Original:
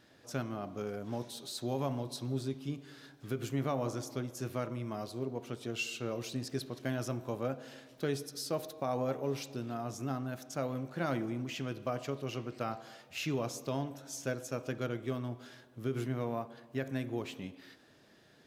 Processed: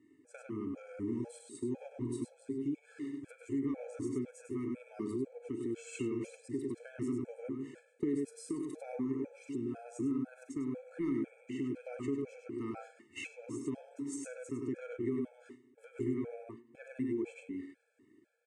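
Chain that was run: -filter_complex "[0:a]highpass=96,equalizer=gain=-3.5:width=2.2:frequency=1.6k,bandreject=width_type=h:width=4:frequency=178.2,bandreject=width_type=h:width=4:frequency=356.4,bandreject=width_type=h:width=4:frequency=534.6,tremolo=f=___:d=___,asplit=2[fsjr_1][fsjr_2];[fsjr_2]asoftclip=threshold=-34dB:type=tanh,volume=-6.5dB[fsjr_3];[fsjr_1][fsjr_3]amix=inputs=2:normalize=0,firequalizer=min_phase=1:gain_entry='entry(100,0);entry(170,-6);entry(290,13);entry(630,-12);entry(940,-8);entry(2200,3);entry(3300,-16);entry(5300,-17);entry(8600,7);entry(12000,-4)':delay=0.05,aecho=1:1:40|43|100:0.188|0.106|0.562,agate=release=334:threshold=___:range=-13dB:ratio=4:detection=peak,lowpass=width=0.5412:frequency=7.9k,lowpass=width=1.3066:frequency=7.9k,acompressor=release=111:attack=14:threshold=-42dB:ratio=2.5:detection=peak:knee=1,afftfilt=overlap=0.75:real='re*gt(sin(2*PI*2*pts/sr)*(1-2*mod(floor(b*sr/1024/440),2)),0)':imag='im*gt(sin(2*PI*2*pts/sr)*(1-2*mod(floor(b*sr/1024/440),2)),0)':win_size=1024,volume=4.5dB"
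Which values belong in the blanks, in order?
1, 0.53, -42dB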